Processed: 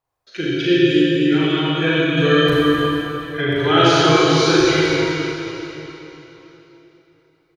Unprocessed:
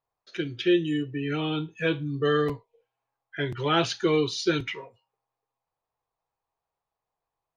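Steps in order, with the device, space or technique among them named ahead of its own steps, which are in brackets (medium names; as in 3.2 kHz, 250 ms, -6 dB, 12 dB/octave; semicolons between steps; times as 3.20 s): reverb removal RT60 1.7 s; cave (delay 254 ms -8 dB; reverberation RT60 3.6 s, pre-delay 32 ms, DRR -7.5 dB); 2.17–3.41 s: tone controls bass +2 dB, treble +9 dB; doubling 38 ms -6 dB; trim +3.5 dB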